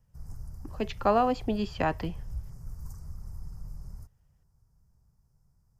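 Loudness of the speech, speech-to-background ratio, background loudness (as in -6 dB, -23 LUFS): -29.0 LUFS, 16.5 dB, -45.5 LUFS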